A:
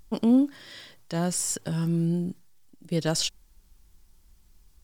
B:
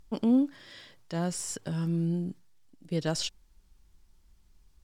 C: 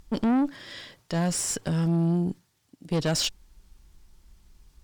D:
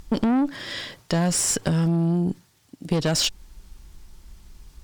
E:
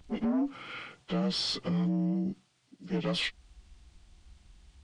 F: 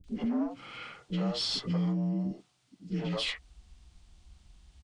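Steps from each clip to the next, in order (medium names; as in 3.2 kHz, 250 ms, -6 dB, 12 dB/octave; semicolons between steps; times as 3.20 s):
treble shelf 9.1 kHz -10.5 dB; trim -3.5 dB
valve stage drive 29 dB, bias 0.4; trim +9 dB
compression 6:1, threshold -28 dBFS, peak gain reduction 7 dB; trim +9 dB
frequency axis rescaled in octaves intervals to 84%; trim -7.5 dB
three bands offset in time lows, highs, mids 40/80 ms, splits 380/1800 Hz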